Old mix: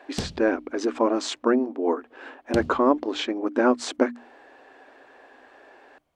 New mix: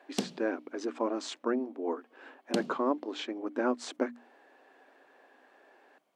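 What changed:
speech −9.5 dB
master: add Butterworth high-pass 190 Hz 36 dB per octave

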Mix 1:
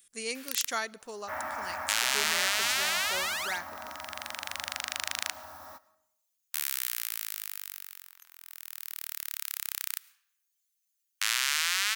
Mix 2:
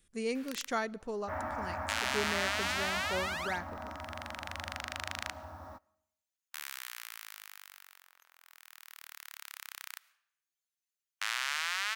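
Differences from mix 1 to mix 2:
second sound: send −10.0 dB
master: add spectral tilt −4 dB per octave

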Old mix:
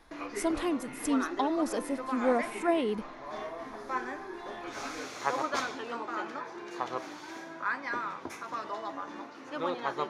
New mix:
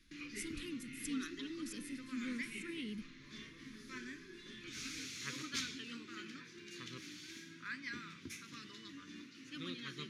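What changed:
speech −6.0 dB
master: add Chebyshev band-stop filter 200–2,700 Hz, order 2

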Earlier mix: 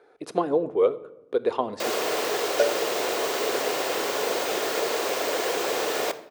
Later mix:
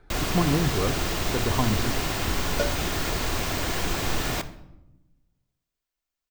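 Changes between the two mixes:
first sound: entry −1.70 s
master: remove high-pass with resonance 470 Hz, resonance Q 3.9

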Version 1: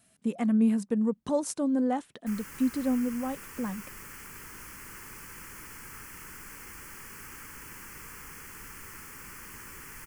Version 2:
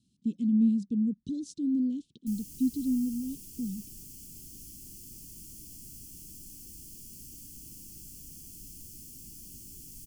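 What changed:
speech: add high-frequency loss of the air 130 metres
master: add inverse Chebyshev band-stop filter 620–1,900 Hz, stop band 50 dB

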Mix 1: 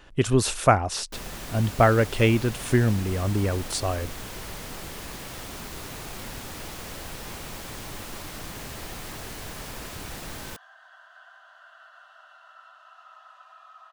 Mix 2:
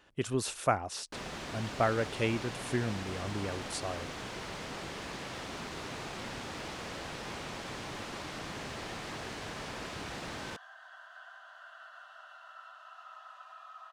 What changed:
speech −9.5 dB
first sound: add high-frequency loss of the air 90 metres
master: add high-pass filter 160 Hz 6 dB per octave

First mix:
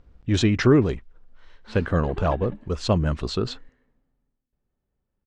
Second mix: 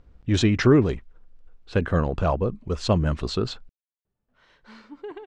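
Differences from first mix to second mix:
background: entry +3.00 s
reverb: off

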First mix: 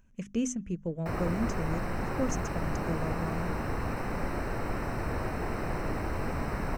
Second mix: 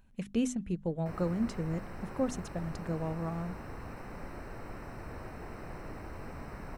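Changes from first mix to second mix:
speech: add thirty-one-band graphic EQ 800 Hz +9 dB, 4,000 Hz +12 dB, 6,300 Hz −11 dB, 10,000 Hz +11 dB
background −11.0 dB

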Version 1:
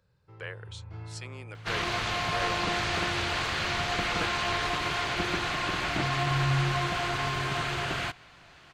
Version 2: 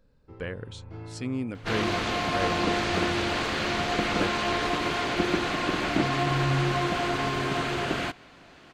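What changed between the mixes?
speech: remove high-pass filter 360 Hz 24 dB per octave
master: add octave-band graphic EQ 125/250/500 Hz −3/+11/+5 dB

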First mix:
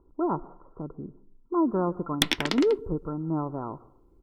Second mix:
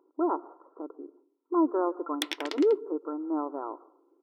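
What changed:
background −8.0 dB
master: add linear-phase brick-wall high-pass 270 Hz

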